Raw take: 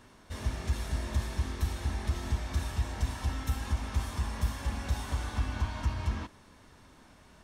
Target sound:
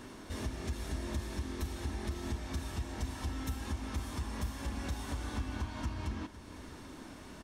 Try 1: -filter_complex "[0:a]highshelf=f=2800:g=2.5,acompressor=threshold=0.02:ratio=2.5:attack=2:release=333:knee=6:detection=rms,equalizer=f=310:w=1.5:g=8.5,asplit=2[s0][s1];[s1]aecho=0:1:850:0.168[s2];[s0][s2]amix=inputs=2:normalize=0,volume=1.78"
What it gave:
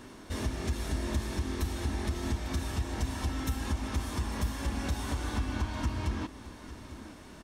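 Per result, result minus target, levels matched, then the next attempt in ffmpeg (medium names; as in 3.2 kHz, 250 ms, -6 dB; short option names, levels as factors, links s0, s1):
echo 342 ms late; compression: peak gain reduction -5.5 dB
-filter_complex "[0:a]highshelf=f=2800:g=2.5,acompressor=threshold=0.02:ratio=2.5:attack=2:release=333:knee=6:detection=rms,equalizer=f=310:w=1.5:g=8.5,asplit=2[s0][s1];[s1]aecho=0:1:508:0.168[s2];[s0][s2]amix=inputs=2:normalize=0,volume=1.78"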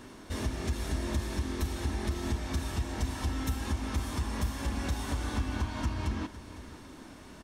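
compression: peak gain reduction -5.5 dB
-filter_complex "[0:a]highshelf=f=2800:g=2.5,acompressor=threshold=0.00708:ratio=2.5:attack=2:release=333:knee=6:detection=rms,equalizer=f=310:w=1.5:g=8.5,asplit=2[s0][s1];[s1]aecho=0:1:508:0.168[s2];[s0][s2]amix=inputs=2:normalize=0,volume=1.78"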